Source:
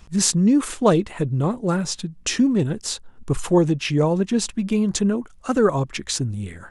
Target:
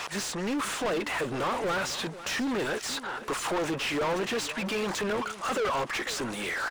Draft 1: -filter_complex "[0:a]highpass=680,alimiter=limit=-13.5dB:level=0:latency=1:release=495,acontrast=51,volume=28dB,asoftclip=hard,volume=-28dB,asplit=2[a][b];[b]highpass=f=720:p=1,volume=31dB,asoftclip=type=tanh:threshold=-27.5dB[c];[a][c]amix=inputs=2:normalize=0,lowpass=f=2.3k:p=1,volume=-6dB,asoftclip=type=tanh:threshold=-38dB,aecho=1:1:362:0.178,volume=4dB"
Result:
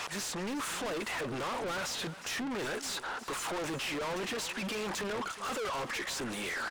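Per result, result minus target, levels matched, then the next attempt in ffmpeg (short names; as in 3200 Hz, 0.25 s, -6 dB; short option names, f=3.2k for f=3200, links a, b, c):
soft clip: distortion +12 dB; echo 0.134 s early
-filter_complex "[0:a]highpass=680,alimiter=limit=-13.5dB:level=0:latency=1:release=495,acontrast=51,volume=28dB,asoftclip=hard,volume=-28dB,asplit=2[a][b];[b]highpass=f=720:p=1,volume=31dB,asoftclip=type=tanh:threshold=-27.5dB[c];[a][c]amix=inputs=2:normalize=0,lowpass=f=2.3k:p=1,volume=-6dB,asoftclip=type=tanh:threshold=-27.5dB,aecho=1:1:362:0.178,volume=4dB"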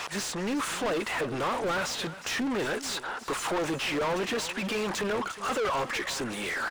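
echo 0.134 s early
-filter_complex "[0:a]highpass=680,alimiter=limit=-13.5dB:level=0:latency=1:release=495,acontrast=51,volume=28dB,asoftclip=hard,volume=-28dB,asplit=2[a][b];[b]highpass=f=720:p=1,volume=31dB,asoftclip=type=tanh:threshold=-27.5dB[c];[a][c]amix=inputs=2:normalize=0,lowpass=f=2.3k:p=1,volume=-6dB,asoftclip=type=tanh:threshold=-27.5dB,aecho=1:1:496:0.178,volume=4dB"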